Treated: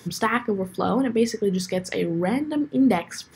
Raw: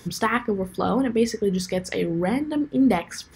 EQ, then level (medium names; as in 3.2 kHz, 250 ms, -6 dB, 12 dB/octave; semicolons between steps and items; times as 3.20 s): high-pass 88 Hz 24 dB/octave; 0.0 dB